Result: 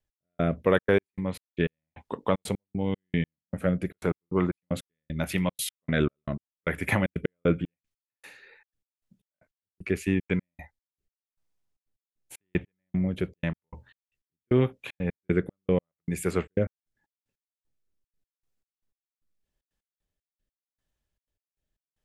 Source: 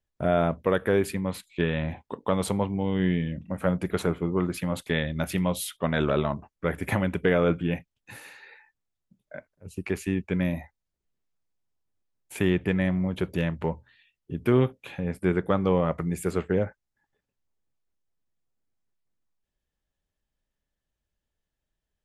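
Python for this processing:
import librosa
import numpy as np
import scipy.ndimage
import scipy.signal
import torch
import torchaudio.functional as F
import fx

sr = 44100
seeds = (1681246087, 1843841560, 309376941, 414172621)

y = fx.rotary(x, sr, hz=0.85)
y = fx.dynamic_eq(y, sr, hz=2200.0, q=2.0, threshold_db=-51.0, ratio=4.0, max_db=5)
y = fx.step_gate(y, sr, bpm=153, pattern='x...xxxx.x..xx..', floor_db=-60.0, edge_ms=4.5)
y = F.gain(torch.from_numpy(y), 2.0).numpy()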